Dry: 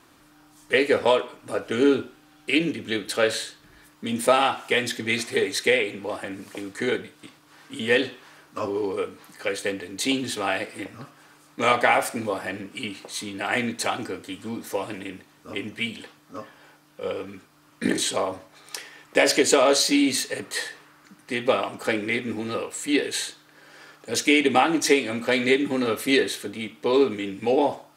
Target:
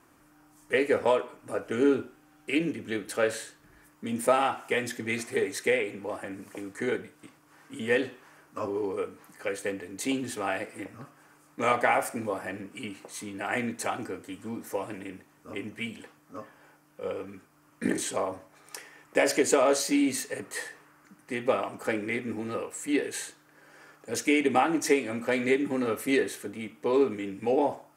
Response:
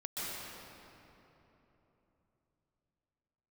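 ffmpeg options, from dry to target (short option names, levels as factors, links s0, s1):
-af "equalizer=f=3800:w=1.6:g=-11,volume=0.631"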